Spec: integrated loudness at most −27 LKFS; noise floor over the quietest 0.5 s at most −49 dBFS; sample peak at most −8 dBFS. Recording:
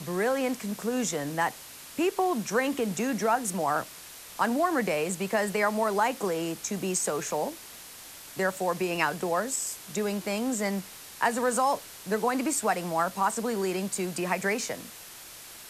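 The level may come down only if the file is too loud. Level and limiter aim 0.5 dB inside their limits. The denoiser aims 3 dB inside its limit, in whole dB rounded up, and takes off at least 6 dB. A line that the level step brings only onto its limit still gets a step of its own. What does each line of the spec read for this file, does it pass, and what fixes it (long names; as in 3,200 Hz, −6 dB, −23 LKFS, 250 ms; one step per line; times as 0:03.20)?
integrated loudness −28.5 LKFS: in spec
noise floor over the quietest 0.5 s −46 dBFS: out of spec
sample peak −9.5 dBFS: in spec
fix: broadband denoise 6 dB, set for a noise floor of −46 dBFS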